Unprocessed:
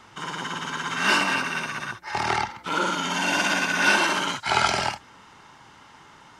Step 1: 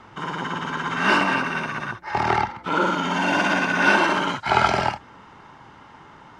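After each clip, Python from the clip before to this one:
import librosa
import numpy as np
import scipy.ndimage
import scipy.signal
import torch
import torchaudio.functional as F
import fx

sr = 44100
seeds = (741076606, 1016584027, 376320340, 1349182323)

y = fx.lowpass(x, sr, hz=1300.0, slope=6)
y = y * librosa.db_to_amplitude(6.0)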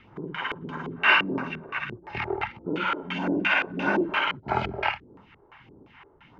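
y = fx.phaser_stages(x, sr, stages=2, low_hz=170.0, high_hz=2700.0, hz=1.6, feedback_pct=30)
y = fx.filter_lfo_lowpass(y, sr, shape='square', hz=2.9, low_hz=400.0, high_hz=2500.0, q=3.2)
y = y * librosa.db_to_amplitude(-4.5)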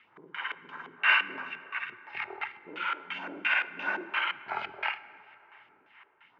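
y = fx.bandpass_q(x, sr, hz=2000.0, q=0.96)
y = fx.rev_plate(y, sr, seeds[0], rt60_s=3.3, hf_ratio=0.5, predelay_ms=0, drr_db=14.5)
y = y * librosa.db_to_amplitude(-2.5)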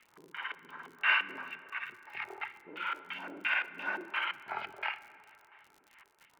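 y = fx.dmg_crackle(x, sr, seeds[1], per_s=61.0, level_db=-42.0)
y = y * librosa.db_to_amplitude(-4.0)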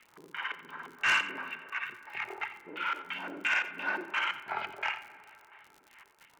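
y = 10.0 ** (-23.0 / 20.0) * np.tanh(x / 10.0 ** (-23.0 / 20.0))
y = y + 10.0 ** (-14.5 / 20.0) * np.pad(y, (int(88 * sr / 1000.0), 0))[:len(y)]
y = y * librosa.db_to_amplitude(3.5)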